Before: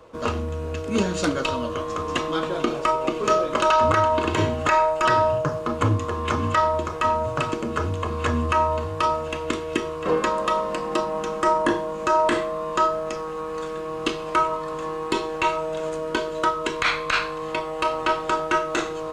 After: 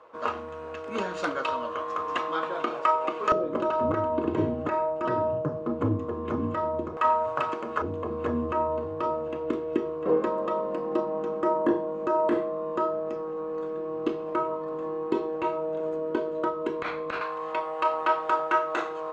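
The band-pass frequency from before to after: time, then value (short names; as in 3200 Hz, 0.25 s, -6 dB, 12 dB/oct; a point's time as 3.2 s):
band-pass, Q 0.95
1100 Hz
from 3.32 s 290 Hz
from 6.97 s 960 Hz
from 7.82 s 370 Hz
from 17.21 s 920 Hz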